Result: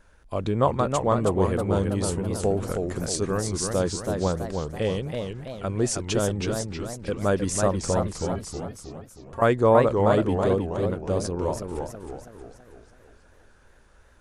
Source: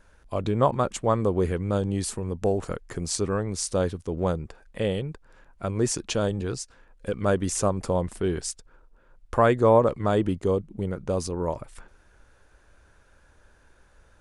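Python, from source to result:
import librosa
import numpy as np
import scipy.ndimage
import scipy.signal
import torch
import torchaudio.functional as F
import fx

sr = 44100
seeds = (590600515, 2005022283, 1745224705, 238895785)

y = fx.stiff_resonator(x, sr, f0_hz=82.0, decay_s=0.31, stiffness=0.03, at=(8.18, 9.42))
y = fx.echo_warbled(y, sr, ms=322, feedback_pct=49, rate_hz=2.8, cents=198, wet_db=-5.0)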